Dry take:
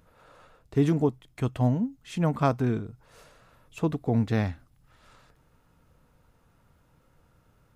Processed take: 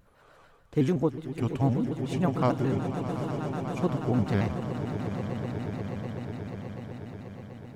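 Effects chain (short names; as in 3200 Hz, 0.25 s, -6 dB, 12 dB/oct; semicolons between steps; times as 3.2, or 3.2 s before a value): swelling echo 0.122 s, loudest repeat 8, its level -13.5 dB; shaped vibrato square 6.8 Hz, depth 160 cents; gain -2 dB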